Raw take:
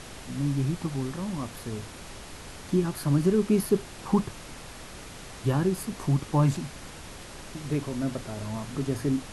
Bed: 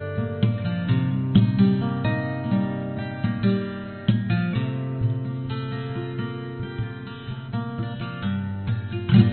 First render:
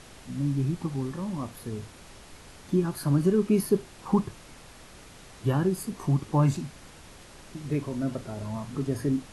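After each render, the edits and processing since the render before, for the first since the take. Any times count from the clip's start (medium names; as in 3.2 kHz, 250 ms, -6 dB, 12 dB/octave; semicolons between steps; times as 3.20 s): noise print and reduce 6 dB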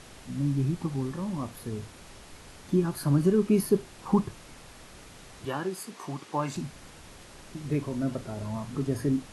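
5.45–6.56 s: frequency weighting A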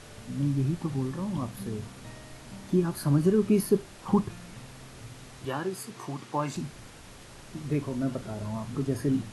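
add bed -23 dB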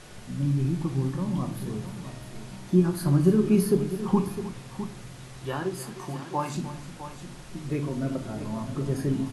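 multi-tap echo 304/657 ms -15/-12 dB; simulated room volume 410 m³, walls furnished, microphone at 0.94 m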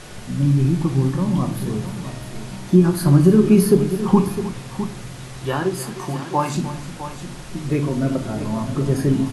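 trim +8.5 dB; peak limiter -3 dBFS, peak gain reduction 2.5 dB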